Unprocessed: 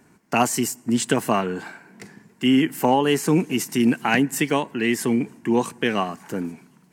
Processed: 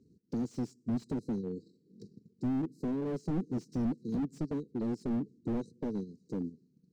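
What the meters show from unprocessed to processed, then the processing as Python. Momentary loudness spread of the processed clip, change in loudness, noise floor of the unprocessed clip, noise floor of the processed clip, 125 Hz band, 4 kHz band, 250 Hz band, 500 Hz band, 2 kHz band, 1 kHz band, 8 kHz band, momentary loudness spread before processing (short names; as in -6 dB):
8 LU, -14.0 dB, -56 dBFS, -71 dBFS, -9.0 dB, under -30 dB, -12.0 dB, -16.5 dB, -31.5 dB, -25.0 dB, under -30 dB, 10 LU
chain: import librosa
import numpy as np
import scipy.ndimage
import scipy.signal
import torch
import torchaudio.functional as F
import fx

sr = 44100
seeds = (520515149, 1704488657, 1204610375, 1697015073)

y = scipy.signal.sosfilt(scipy.signal.butter(4, 45.0, 'highpass', fs=sr, output='sos'), x)
y = fx.low_shelf(y, sr, hz=110.0, db=8.0)
y = fx.transient(y, sr, attack_db=2, sustain_db=-8)
y = fx.brickwall_bandstop(y, sr, low_hz=520.0, high_hz=3800.0)
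y = fx.air_absorb(y, sr, metres=160.0)
y = fx.slew_limit(y, sr, full_power_hz=25.0)
y = F.gain(torch.from_numpy(y), -9.0).numpy()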